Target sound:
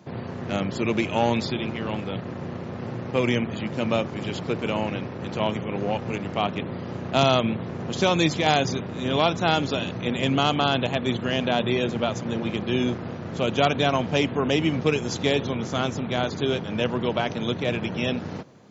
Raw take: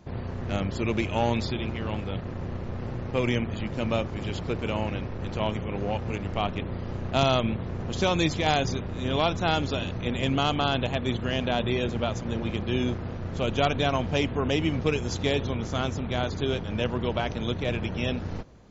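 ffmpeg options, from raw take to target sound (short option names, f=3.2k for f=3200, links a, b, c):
-af "highpass=f=120:w=0.5412,highpass=f=120:w=1.3066,volume=3.5dB"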